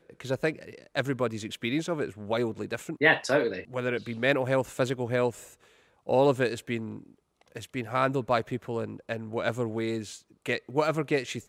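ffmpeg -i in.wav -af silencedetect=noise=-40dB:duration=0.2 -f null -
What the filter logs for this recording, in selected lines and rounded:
silence_start: 5.47
silence_end: 6.07 | silence_duration: 0.61
silence_start: 7.03
silence_end: 7.55 | silence_duration: 0.52
silence_start: 10.17
silence_end: 10.46 | silence_duration: 0.29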